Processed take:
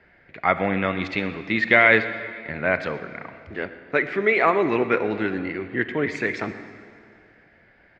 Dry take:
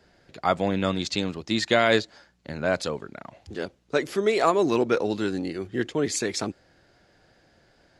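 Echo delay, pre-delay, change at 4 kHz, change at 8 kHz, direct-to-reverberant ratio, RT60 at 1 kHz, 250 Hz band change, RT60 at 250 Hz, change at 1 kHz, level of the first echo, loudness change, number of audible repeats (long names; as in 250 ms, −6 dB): 123 ms, 25 ms, −6.0 dB, below −15 dB, 10.0 dB, 2.2 s, +0.5 dB, 2.4 s, +3.0 dB, −20.0 dB, +3.5 dB, 1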